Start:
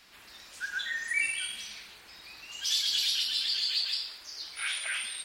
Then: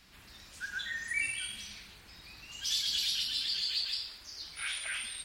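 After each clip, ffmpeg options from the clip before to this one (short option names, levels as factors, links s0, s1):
-af "bass=f=250:g=14,treble=f=4000:g=1,volume=0.631"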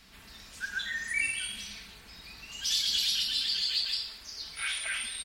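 -af "aecho=1:1:4.5:0.31,volume=1.41"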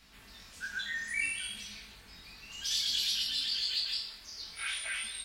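-af "flanger=delay=18.5:depth=6.4:speed=0.59"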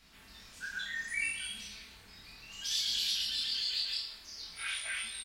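-filter_complex "[0:a]asplit=2[s0][s1];[s1]adelay=31,volume=0.596[s2];[s0][s2]amix=inputs=2:normalize=0,volume=0.75"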